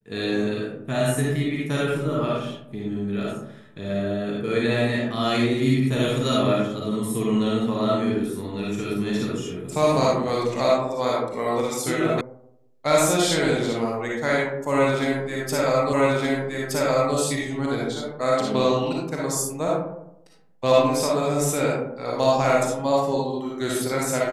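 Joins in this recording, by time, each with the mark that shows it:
12.21 sound cut off
15.93 repeat of the last 1.22 s

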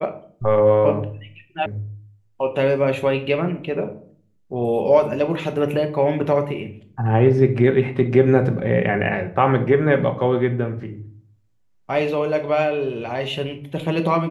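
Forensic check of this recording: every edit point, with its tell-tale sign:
1.66 sound cut off

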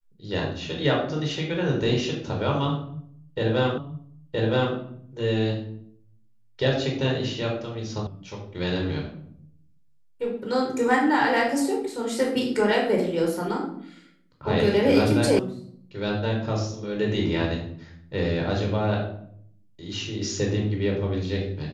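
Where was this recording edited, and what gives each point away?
3.78 repeat of the last 0.97 s
8.07 sound cut off
15.39 sound cut off

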